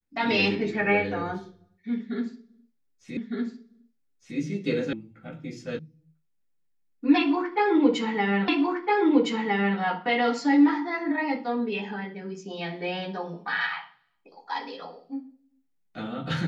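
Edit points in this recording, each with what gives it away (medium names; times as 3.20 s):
3.17 s: repeat of the last 1.21 s
4.93 s: sound stops dead
5.79 s: sound stops dead
8.48 s: repeat of the last 1.31 s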